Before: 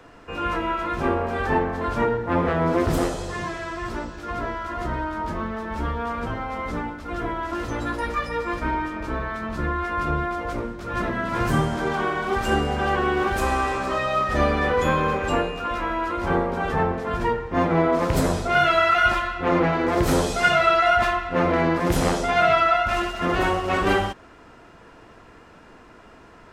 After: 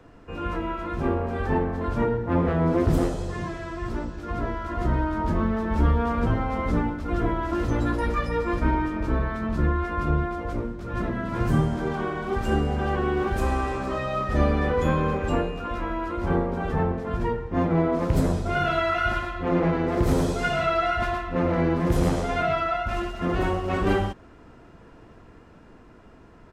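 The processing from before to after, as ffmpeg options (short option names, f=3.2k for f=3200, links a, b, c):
-filter_complex "[0:a]asplit=3[a][b][c];[a]afade=t=out:st=18.45:d=0.02[d];[b]aecho=1:1:111:0.562,afade=t=in:st=18.45:d=0.02,afade=t=out:st=22.42:d=0.02[e];[c]afade=t=in:st=22.42:d=0.02[f];[d][e][f]amix=inputs=3:normalize=0,lowshelf=f=450:g=11,dynaudnorm=f=200:g=17:m=11.5dB,volume=-8.5dB"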